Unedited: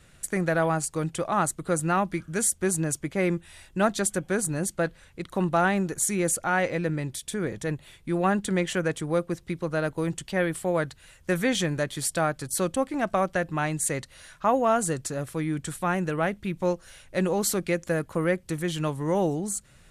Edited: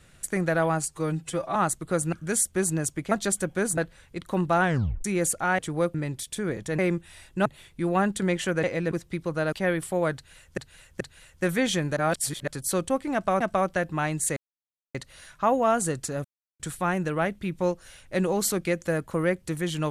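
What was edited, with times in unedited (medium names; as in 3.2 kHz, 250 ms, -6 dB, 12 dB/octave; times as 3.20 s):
0.88–1.33 s: stretch 1.5×
1.90–2.19 s: delete
3.18–3.85 s: move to 7.74 s
4.51–4.81 s: delete
5.67 s: tape stop 0.41 s
6.62–6.90 s: swap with 8.92–9.28 s
9.89–10.25 s: delete
10.87–11.30 s: loop, 3 plays
11.83–12.34 s: reverse
13.00–13.27 s: loop, 2 plays
13.96 s: insert silence 0.58 s
15.26–15.61 s: mute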